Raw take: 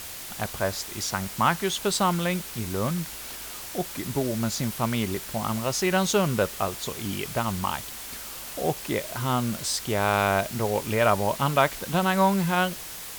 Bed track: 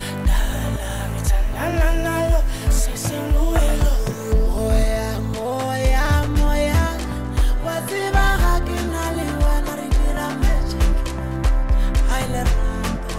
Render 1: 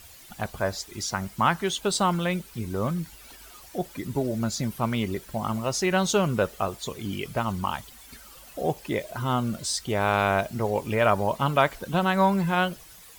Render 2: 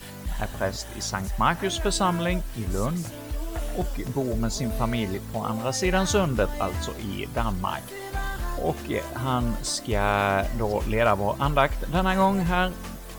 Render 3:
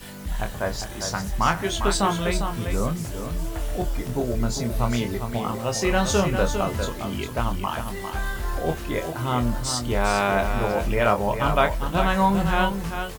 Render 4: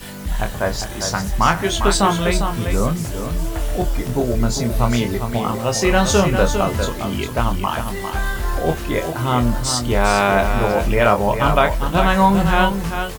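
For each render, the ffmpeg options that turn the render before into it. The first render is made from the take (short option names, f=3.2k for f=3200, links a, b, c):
-af "afftdn=nr=13:nf=-38"
-filter_complex "[1:a]volume=-14dB[a];[0:a][a]amix=inputs=2:normalize=0"
-filter_complex "[0:a]asplit=2[a][b];[b]adelay=25,volume=-6.5dB[c];[a][c]amix=inputs=2:normalize=0,aecho=1:1:402:0.422"
-af "volume=6dB,alimiter=limit=-2dB:level=0:latency=1"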